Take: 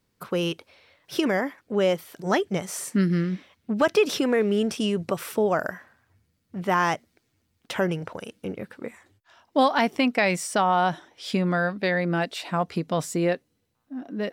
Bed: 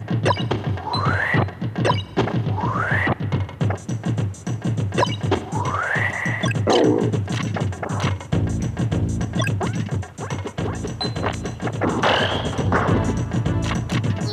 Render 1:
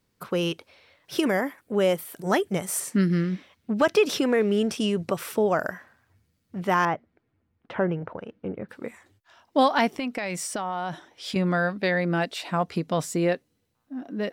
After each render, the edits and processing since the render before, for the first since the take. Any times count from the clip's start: 1.18–2.80 s: resonant high shelf 7.5 kHz +7 dB, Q 1.5; 6.85–8.69 s: low-pass 1.6 kHz; 9.92–11.36 s: compression 10:1, threshold -25 dBFS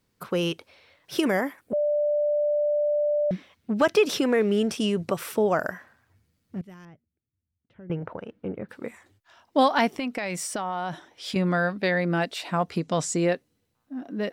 1.73–3.31 s: bleep 591 Hz -20.5 dBFS; 6.61–7.90 s: amplifier tone stack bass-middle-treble 10-0-1; 12.81–13.26 s: resonant low-pass 7.4 kHz, resonance Q 2.1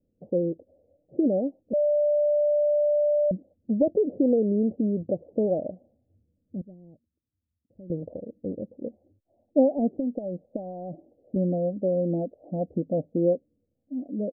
steep low-pass 670 Hz 72 dB/octave; comb 3.7 ms, depth 38%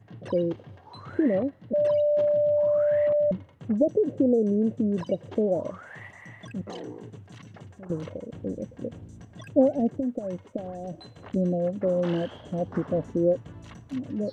add bed -22.5 dB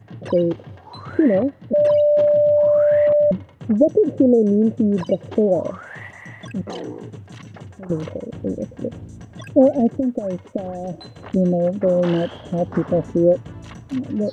trim +7.5 dB; peak limiter -3 dBFS, peak gain reduction 2 dB

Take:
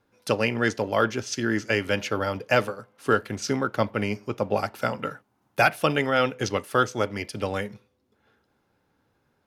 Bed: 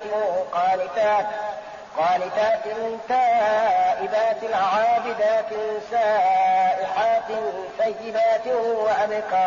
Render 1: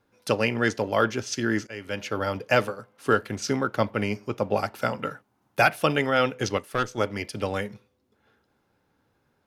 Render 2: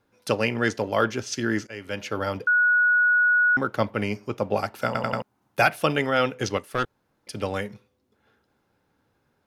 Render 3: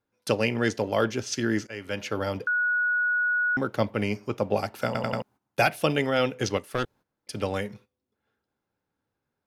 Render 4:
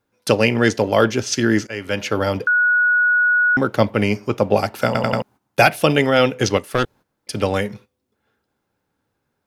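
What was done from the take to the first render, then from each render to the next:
1.67–2.29 s: fade in, from -20.5 dB; 6.58–6.98 s: valve stage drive 16 dB, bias 0.75
2.47–3.57 s: bleep 1.46 kHz -16 dBFS; 4.86 s: stutter in place 0.09 s, 4 plays; 6.85–7.27 s: room tone
dynamic bell 1.3 kHz, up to -6 dB, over -34 dBFS, Q 1.3; gate -50 dBFS, range -13 dB
trim +9 dB; peak limiter -1 dBFS, peak gain reduction 1.5 dB

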